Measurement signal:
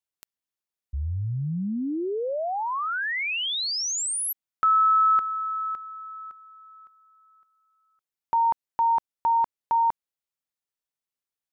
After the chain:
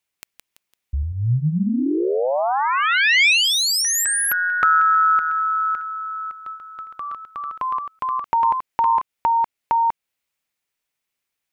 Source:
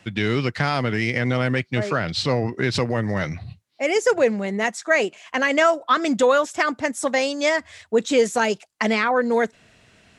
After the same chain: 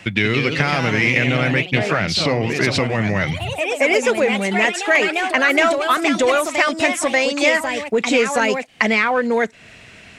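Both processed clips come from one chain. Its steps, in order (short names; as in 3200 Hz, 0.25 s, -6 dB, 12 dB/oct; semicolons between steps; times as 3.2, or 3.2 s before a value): in parallel at -7 dB: hard clip -14 dBFS; on the sum: compressor 2:1, threshold -28 dBFS; bell 2300 Hz +7 dB 0.69 oct; echoes that change speed 0.191 s, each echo +2 st, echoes 3, each echo -6 dB; gain +6 dB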